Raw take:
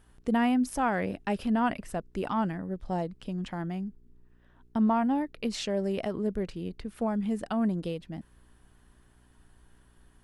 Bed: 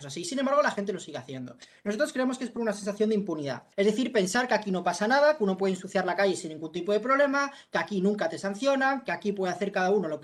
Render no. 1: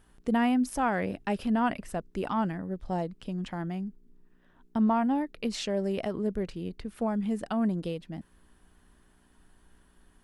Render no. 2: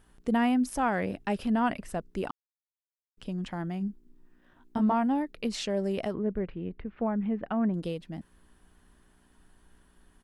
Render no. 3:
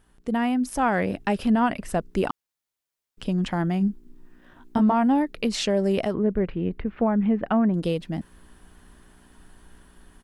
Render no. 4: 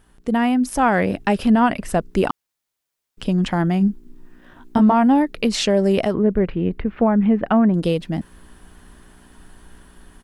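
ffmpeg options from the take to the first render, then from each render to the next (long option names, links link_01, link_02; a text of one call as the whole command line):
ffmpeg -i in.wav -af "bandreject=frequency=60:width_type=h:width=4,bandreject=frequency=120:width_type=h:width=4" out.wav
ffmpeg -i in.wav -filter_complex "[0:a]asplit=3[link_01][link_02][link_03];[link_01]afade=type=out:start_time=3.8:duration=0.02[link_04];[link_02]asplit=2[link_05][link_06];[link_06]adelay=20,volume=-3.5dB[link_07];[link_05][link_07]amix=inputs=2:normalize=0,afade=type=in:start_time=3.8:duration=0.02,afade=type=out:start_time=4.92:duration=0.02[link_08];[link_03]afade=type=in:start_time=4.92:duration=0.02[link_09];[link_04][link_08][link_09]amix=inputs=3:normalize=0,asettb=1/sr,asplit=3[link_10][link_11][link_12];[link_10]atrim=end=6.144[link_13];[link_11]atrim=start=6.14:end=7.74,asetpts=PTS-STARTPTS,afade=type=in:duration=0.004:curve=qsin,afade=type=out:start_time=1.596:duration=0.004:curve=qsin,lowpass=frequency=2500:width=0.5412,lowpass=frequency=2500:width=1.3066[link_14];[link_12]atrim=start=7.736[link_15];[link_13][link_14]acrossfade=duration=0.004:curve1=hsin:curve2=qsin[link_16];[link_16][link_15]acrossfade=duration=0.004:curve1=qsin:curve2=hsin,asplit=3[link_17][link_18][link_19];[link_17]atrim=end=2.31,asetpts=PTS-STARTPTS,afade=type=out:start_time=2.306:duration=0.004:curve=hsin[link_20];[link_18]atrim=start=2.31:end=3.17,asetpts=PTS-STARTPTS,volume=0[link_21];[link_19]atrim=start=3.17,asetpts=PTS-STARTPTS,afade=type=in:duration=0.004:curve=hsin[link_22];[link_20][link_21][link_22]concat=n=3:v=0:a=1" out.wav
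ffmpeg -i in.wav -af "dynaudnorm=framelen=600:gausssize=3:maxgain=9.5dB,alimiter=limit=-13dB:level=0:latency=1:release=344" out.wav
ffmpeg -i in.wav -af "volume=5.5dB" out.wav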